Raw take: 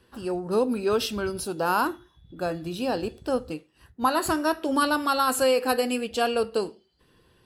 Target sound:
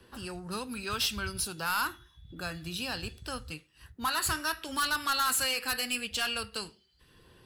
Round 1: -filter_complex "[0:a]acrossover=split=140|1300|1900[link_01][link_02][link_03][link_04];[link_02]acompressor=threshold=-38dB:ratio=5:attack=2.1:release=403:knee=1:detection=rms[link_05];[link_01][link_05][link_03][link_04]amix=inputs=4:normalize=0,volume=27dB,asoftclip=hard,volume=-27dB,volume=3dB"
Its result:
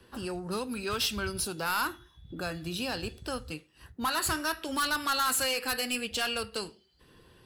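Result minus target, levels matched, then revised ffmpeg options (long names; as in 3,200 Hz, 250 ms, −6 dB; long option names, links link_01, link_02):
downward compressor: peak gain reduction −7.5 dB
-filter_complex "[0:a]acrossover=split=140|1300|1900[link_01][link_02][link_03][link_04];[link_02]acompressor=threshold=-47.5dB:ratio=5:attack=2.1:release=403:knee=1:detection=rms[link_05];[link_01][link_05][link_03][link_04]amix=inputs=4:normalize=0,volume=27dB,asoftclip=hard,volume=-27dB,volume=3dB"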